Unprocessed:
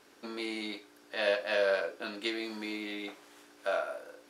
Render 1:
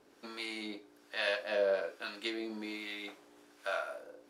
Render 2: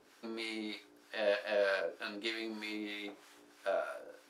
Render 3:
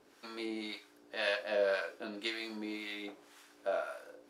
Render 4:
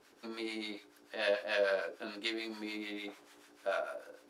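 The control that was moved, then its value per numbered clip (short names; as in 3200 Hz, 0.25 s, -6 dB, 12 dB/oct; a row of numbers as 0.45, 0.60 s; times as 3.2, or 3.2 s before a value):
harmonic tremolo, rate: 1.2, 3.2, 1.9, 6.8 Hz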